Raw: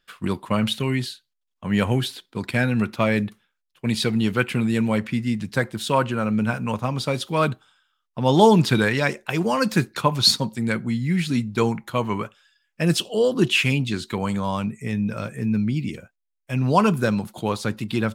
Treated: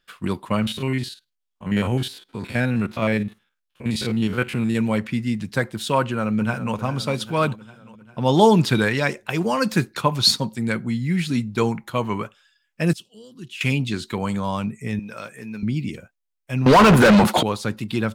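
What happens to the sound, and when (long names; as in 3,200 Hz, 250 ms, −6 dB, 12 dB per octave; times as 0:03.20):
0:00.62–0:04.75: spectrum averaged block by block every 50 ms
0:06.00–0:06.75: delay throw 400 ms, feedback 60%, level −13 dB
0:12.93–0:13.61: guitar amp tone stack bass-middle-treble 6-0-2
0:14.99–0:15.63: high-pass filter 750 Hz 6 dB per octave
0:16.66–0:17.43: mid-hump overdrive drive 38 dB, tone 2,000 Hz, clips at −4.5 dBFS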